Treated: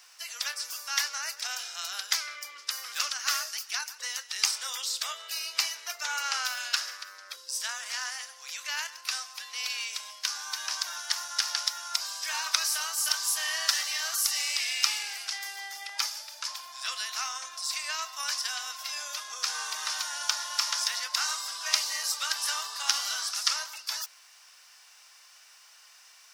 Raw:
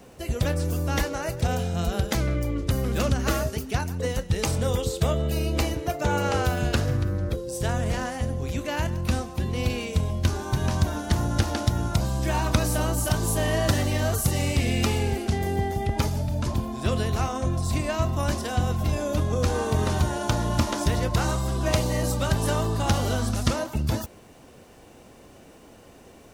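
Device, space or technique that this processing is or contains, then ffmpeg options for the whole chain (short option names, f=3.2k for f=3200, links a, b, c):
headphones lying on a table: -af "highpass=f=1.2k:w=0.5412,highpass=f=1.2k:w=1.3066,equalizer=f=5.2k:t=o:w=0.55:g=11.5"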